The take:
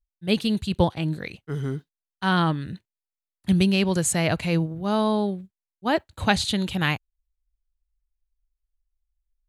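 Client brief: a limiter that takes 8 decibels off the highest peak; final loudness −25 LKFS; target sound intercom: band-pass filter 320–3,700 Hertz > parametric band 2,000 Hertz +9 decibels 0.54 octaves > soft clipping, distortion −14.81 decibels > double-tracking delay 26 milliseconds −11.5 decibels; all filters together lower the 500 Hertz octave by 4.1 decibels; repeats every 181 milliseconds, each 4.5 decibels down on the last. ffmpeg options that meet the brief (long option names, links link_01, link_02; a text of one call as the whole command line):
ffmpeg -i in.wav -filter_complex "[0:a]equalizer=frequency=500:width_type=o:gain=-4.5,alimiter=limit=-14.5dB:level=0:latency=1,highpass=320,lowpass=3700,equalizer=frequency=2000:width_type=o:width=0.54:gain=9,aecho=1:1:181|362|543|724|905|1086|1267|1448|1629:0.596|0.357|0.214|0.129|0.0772|0.0463|0.0278|0.0167|0.01,asoftclip=threshold=-18dB,asplit=2[link_01][link_02];[link_02]adelay=26,volume=-11.5dB[link_03];[link_01][link_03]amix=inputs=2:normalize=0,volume=4.5dB" out.wav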